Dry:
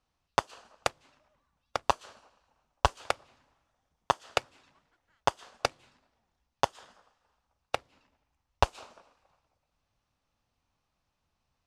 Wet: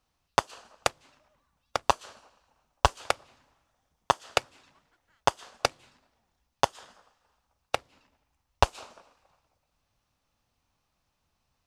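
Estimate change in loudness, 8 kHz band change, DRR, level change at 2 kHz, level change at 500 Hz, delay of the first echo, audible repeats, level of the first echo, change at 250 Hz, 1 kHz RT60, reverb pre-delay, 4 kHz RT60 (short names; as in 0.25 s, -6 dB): +3.0 dB, +5.0 dB, none, +3.0 dB, +2.5 dB, none, none, none, +2.5 dB, none, none, none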